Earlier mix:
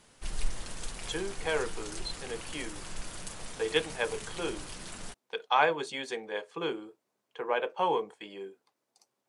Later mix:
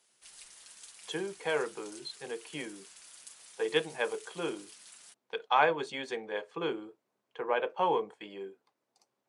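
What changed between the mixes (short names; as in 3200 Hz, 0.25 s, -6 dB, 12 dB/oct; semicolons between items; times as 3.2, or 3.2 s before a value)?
background: add differentiator; master: add high shelf 5000 Hz -8.5 dB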